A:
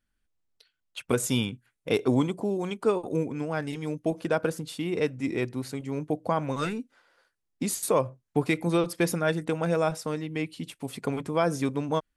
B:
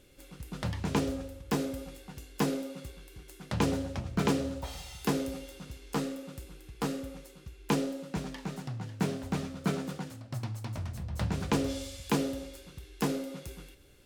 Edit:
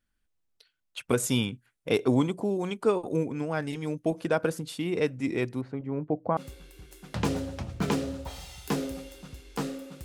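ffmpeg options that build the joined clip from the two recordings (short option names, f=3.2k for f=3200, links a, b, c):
-filter_complex "[0:a]asettb=1/sr,asplit=3[a][b][c];[a]atrim=end=5.614[d];[b]atrim=start=5.61:end=6.37,asetpts=PTS-STARTPTS,afade=t=in:d=0.004:c=qsin,afade=t=out:st=0.756:d=0.004:c=qsin,lowpass=1.4k[e];[c]atrim=start=6.366[f];[d][e]acrossfade=d=0.004:c1=hsin:c2=qsin[g];[g][f]acrossfade=d=0.004:c1=qsin:c2=hsin,apad=whole_dur=10.04,atrim=end=10.04,atrim=end=6.372[h];[1:a]atrim=start=2.738:end=6.41[i];[h][i]acrossfade=d=0.004:c1=hsin:c2=hsin"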